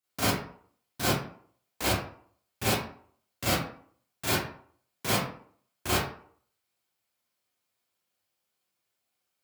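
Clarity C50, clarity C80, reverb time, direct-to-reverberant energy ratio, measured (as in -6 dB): -0.5 dB, 5.5 dB, 0.55 s, -10.5 dB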